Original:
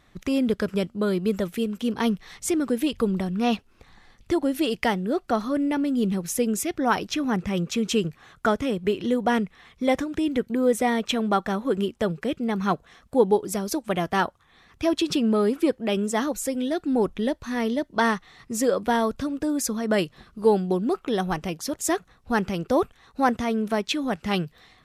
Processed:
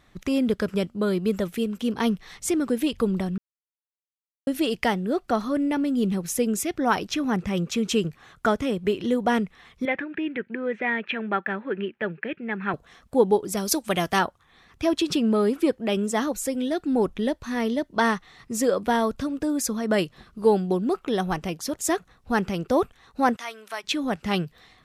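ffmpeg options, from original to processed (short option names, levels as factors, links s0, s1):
-filter_complex "[0:a]asettb=1/sr,asplit=3[s0][s1][s2];[s0]atrim=end=9.854[s3];[s1]atrim=start=9.85:end=12.74,asetpts=PTS-STARTPTS,afade=t=in:d=0.004:c=qsin,afade=t=out:st=2.886:d=0.004:c=qsin,highpass=230,equalizer=f=260:t=q:w=4:g=-7,equalizer=f=490:t=q:w=4:g=-6,equalizer=f=710:t=q:w=4:g=-7,equalizer=f=1100:t=q:w=4:g=-8,equalizer=f=1700:t=q:w=4:g=9,equalizer=f=2500:t=q:w=4:g=7,lowpass=f=2600:w=0.5412,lowpass=f=2600:w=1.3066[s4];[s2]atrim=start=12.736[s5];[s3][s4]acrossfade=d=0.004:c1=hsin:c2=qsin[s6];[s6][s5]acrossfade=d=0.004:c1=qsin:c2=hsin,asettb=1/sr,asplit=3[s7][s8][s9];[s7]atrim=end=13.574[s10];[s8]atrim=start=13.57:end=14.19,asetpts=PTS-STARTPTS,afade=t=in:d=0.004:c=qsin,afade=t=out:st=0.616:d=0.004:c=qsin,highshelf=f=2400:g=9.5[s11];[s9]atrim=start=14.186[s12];[s10][s11]acrossfade=d=0.004:c1=hsin:c2=qsin[s13];[s13][s12]acrossfade=d=0.004:c1=qsin:c2=hsin,asplit=3[s14][s15][s16];[s14]afade=t=out:st=23.35:d=0.02[s17];[s15]highpass=1100,afade=t=in:st=23.35:d=0.02,afade=t=out:st=23.83:d=0.02[s18];[s16]afade=t=in:st=23.83:d=0.02[s19];[s17][s18][s19]amix=inputs=3:normalize=0,asplit=3[s20][s21][s22];[s20]atrim=end=3.38,asetpts=PTS-STARTPTS,afade=t=out:st=3.376:d=0.004:c=hsin[s23];[s21]atrim=start=3.38:end=4.47,asetpts=PTS-STARTPTS,volume=0[s24];[s22]atrim=start=4.47,asetpts=PTS-STARTPTS,afade=t=in:d=0.004:c=hsin[s25];[s23][s24][s25]concat=n=3:v=0:a=1"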